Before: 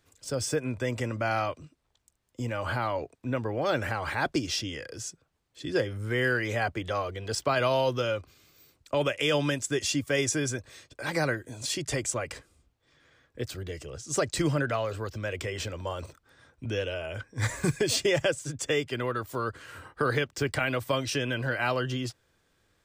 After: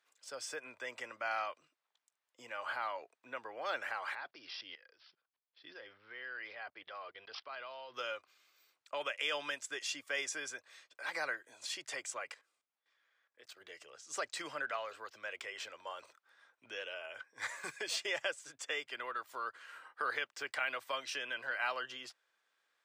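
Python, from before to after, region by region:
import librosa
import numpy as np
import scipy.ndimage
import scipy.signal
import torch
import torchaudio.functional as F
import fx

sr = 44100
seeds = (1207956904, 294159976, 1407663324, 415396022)

y = fx.chain(x, sr, fx.low_shelf(hz=69.0, db=11.5),
    fx.level_steps(step_db=18),
    fx.resample_bad(factor=4, down='none', up='filtered'), at=(4.15, 7.94))
y = fx.chain(y, sr, fx.highpass(hz=160.0, slope=6),
    fx.level_steps(step_db=14), at=(12.34, 13.61))
y = scipy.signal.sosfilt(scipy.signal.butter(2, 960.0, 'highpass', fs=sr, output='sos'), y)
y = fx.high_shelf(y, sr, hz=5100.0, db=-11.5)
y = y * librosa.db_to_amplitude(-4.0)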